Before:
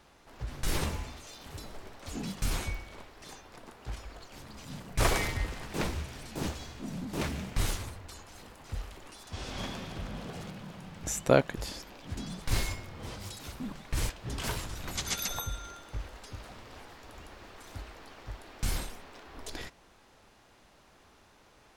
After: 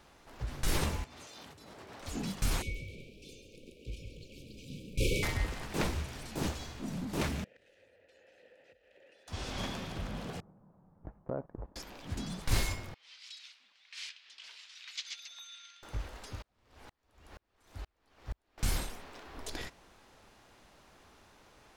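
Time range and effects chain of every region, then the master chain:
1.04–2.01 s: high-pass 110 Hz + treble shelf 9.7 kHz -7 dB + compressor with a negative ratio -52 dBFS
2.62–5.23 s: brick-wall FIR band-stop 560–2200 Hz + tone controls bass -3 dB, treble -8 dB + frequency-shifting echo 135 ms, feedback 40%, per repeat +52 Hz, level -9 dB
7.44–9.28 s: waveshaping leveller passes 1 + compression 16:1, threshold -42 dBFS + vowel filter e
10.40–11.76 s: low-pass 1.1 kHz 24 dB/octave + gate -39 dBFS, range -17 dB + compression 2.5:1, threshold -39 dBFS
12.94–15.83 s: harmonic tremolo 1.3 Hz, crossover 820 Hz + Butterworth band-pass 3.4 kHz, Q 1.1
16.42–18.58 s: peaking EQ 62 Hz +5 dB 1.1 oct + sawtooth tremolo in dB swelling 2.1 Hz, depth 40 dB
whole clip: none

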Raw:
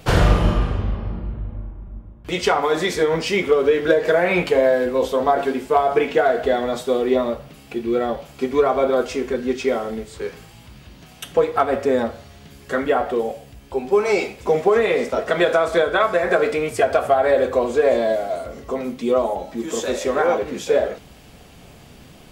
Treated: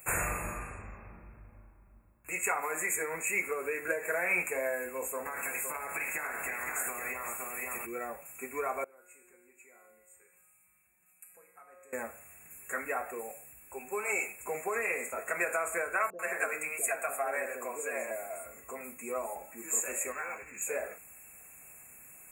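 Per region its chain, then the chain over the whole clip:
5.25–7.85 s: spectral peaks clipped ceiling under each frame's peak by 20 dB + delay 515 ms -7 dB + compression 12:1, threshold -20 dBFS
8.84–11.93 s: compression 1.5:1, threshold -33 dBFS + feedback comb 180 Hz, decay 1.1 s, mix 90%
16.10–18.11 s: high-pass 160 Hz + bands offset in time lows, highs 90 ms, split 470 Hz
20.12–20.62 s: low-pass 6.5 kHz 24 dB/octave + peaking EQ 480 Hz -13 dB 2.9 oct + waveshaping leveller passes 1
whole clip: pre-emphasis filter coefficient 0.8; FFT band-reject 2.7–6.7 kHz; tilt shelf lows -8 dB, about 700 Hz; trim -3 dB

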